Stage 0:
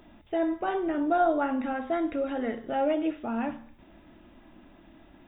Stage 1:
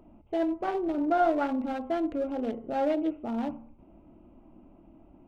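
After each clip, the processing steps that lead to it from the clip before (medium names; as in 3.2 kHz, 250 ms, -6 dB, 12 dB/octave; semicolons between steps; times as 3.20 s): local Wiener filter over 25 samples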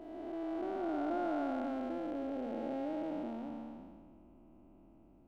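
spectral blur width 671 ms; trim -4 dB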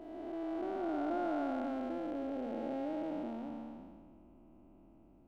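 no audible change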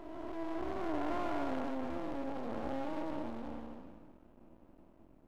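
half-wave rectifier; trim +4 dB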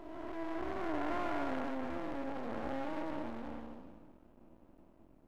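dynamic bell 1.8 kHz, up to +5 dB, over -57 dBFS, Q 1.2; trim -1 dB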